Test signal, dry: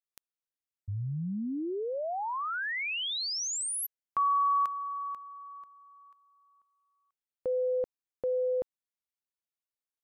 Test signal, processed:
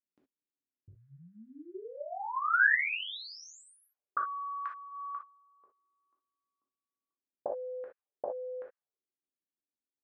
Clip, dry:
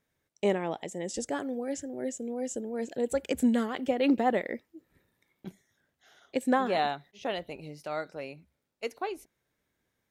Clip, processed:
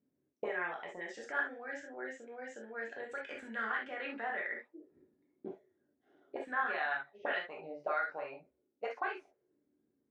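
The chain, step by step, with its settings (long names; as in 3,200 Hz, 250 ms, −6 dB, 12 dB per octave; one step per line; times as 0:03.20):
brickwall limiter −24 dBFS
envelope filter 270–1,600 Hz, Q 4, up, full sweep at −32.5 dBFS
high-frequency loss of the air 85 metres
reverb whose tail is shaped and stops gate 90 ms flat, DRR −2 dB
level +7.5 dB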